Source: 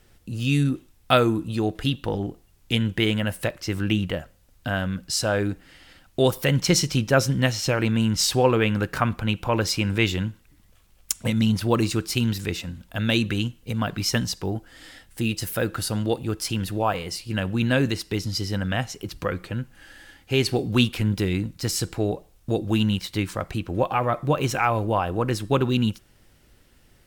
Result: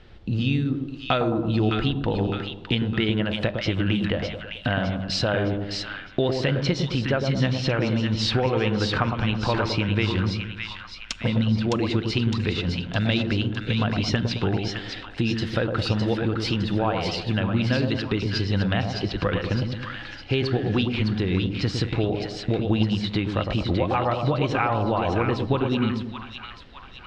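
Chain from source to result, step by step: Chebyshev low-pass 3900 Hz, order 3; compressor 6:1, threshold -29 dBFS, peak gain reduction 15 dB; on a send: split-band echo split 1100 Hz, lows 0.109 s, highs 0.61 s, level -4.5 dB; on the sum: gain +8 dB

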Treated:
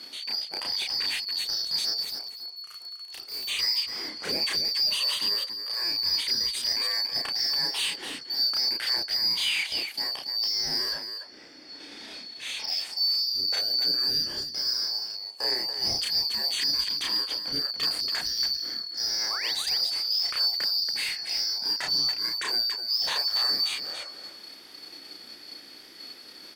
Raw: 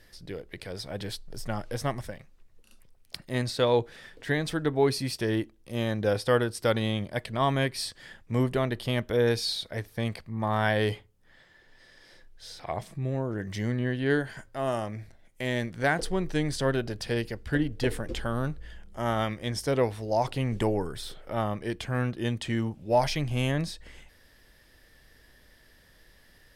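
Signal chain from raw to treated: four-band scrambler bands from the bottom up 2341; 17.35–17.76 high shelf 3300 Hz -9.5 dB; in parallel at -0.5 dB: level quantiser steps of 14 dB; on the sum: limiter -15.5 dBFS, peak gain reduction 9 dB; compressor 1.5:1, threshold -38 dBFS, peak gain reduction 6.5 dB; overdrive pedal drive 16 dB, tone 6300 Hz, clips at -17 dBFS; 2–3.48 hard clip -34 dBFS, distortion -22 dB; 19.3–19.52 painted sound rise 1000–4400 Hz -35 dBFS; loudspeakers at several distances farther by 11 m -1 dB, 97 m -7 dB; gain -3 dB

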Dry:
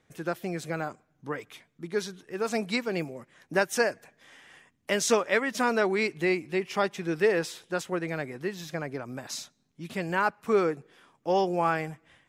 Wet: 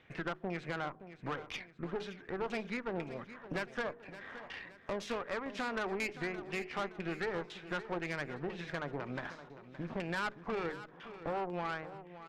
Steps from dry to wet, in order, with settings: ending faded out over 1.04 s; compressor 4:1, threshold -42 dBFS, peak gain reduction 20 dB; LFO low-pass saw down 2 Hz 870–3100 Hz; de-hum 52.56 Hz, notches 9; tube stage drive 39 dB, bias 0.8; feedback echo 0.569 s, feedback 43%, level -13.5 dB; gain +8.5 dB

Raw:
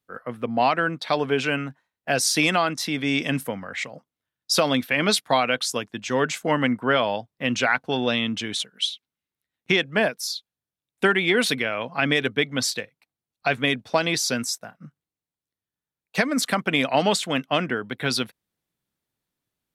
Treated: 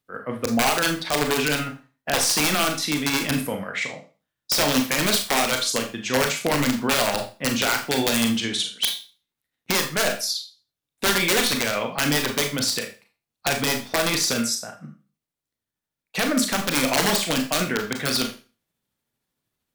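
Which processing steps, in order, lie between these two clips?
in parallel at -1 dB: limiter -17 dBFS, peak gain reduction 11.5 dB; on the sum: tremolo 13 Hz, depth 42%; wrapped overs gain 11.5 dB; Schroeder reverb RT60 0.34 s, combs from 27 ms, DRR 3.5 dB; gain -2 dB

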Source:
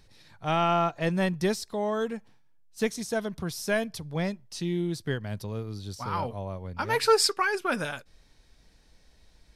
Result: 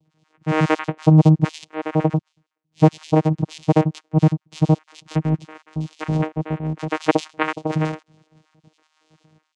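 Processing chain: random spectral dropouts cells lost 56%; vocoder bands 4, saw 156 Hz; AGC gain up to 16 dB

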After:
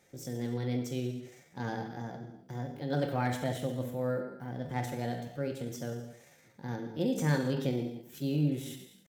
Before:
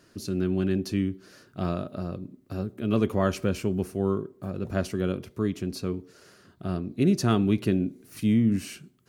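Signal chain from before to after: bell 240 Hz -5 dB 0.9 oct; non-linear reverb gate 0.34 s falling, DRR 2.5 dB; pitch shift +4.5 st; slew limiter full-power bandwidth 170 Hz; gain -7 dB

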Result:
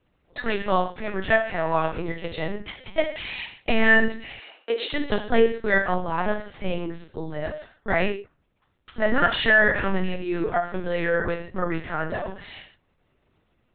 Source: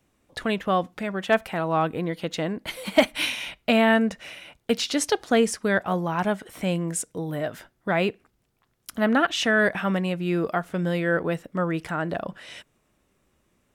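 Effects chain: 2.59–3.59 level quantiser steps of 17 dB; dynamic EQ 1900 Hz, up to +7 dB, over -44 dBFS, Q 5.4; non-linear reverb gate 0.18 s falling, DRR 1.5 dB; LPC vocoder at 8 kHz pitch kept; 4.39–4.93 HPF 320 Hz 24 dB/oct; gain -1.5 dB

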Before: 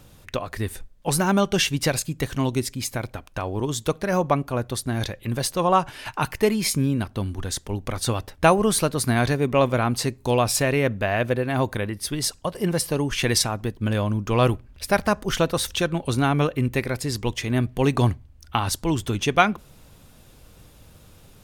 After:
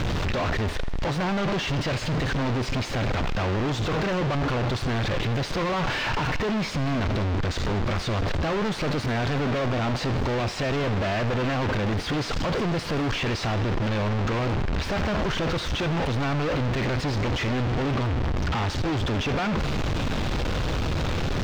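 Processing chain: infinite clipping; air absorption 190 m; thinning echo 80 ms, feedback 78%, level -16.5 dB

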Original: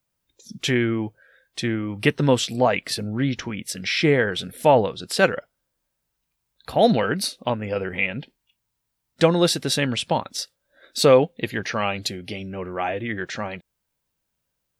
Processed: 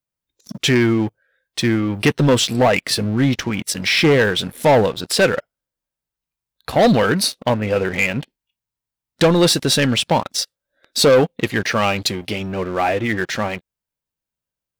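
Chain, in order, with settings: sample leveller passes 3; gain -3.5 dB

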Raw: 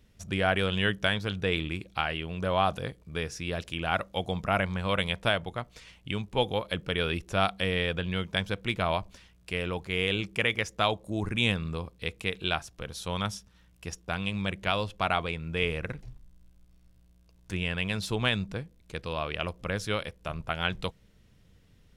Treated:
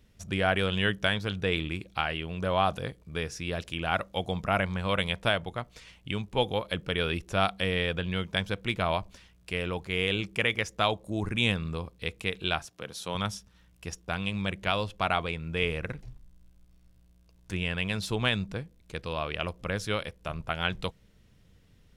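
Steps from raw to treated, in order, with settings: 12.65–13.15 HPF 160 Hz 12 dB/oct

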